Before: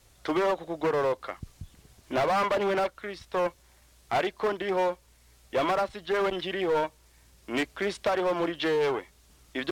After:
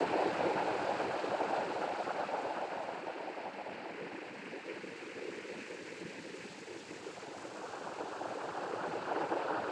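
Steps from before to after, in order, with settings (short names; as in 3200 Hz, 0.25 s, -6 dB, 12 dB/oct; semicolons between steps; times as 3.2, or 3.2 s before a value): Paulstretch 17×, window 0.50 s, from 2.78; noise vocoder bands 8; gain -6.5 dB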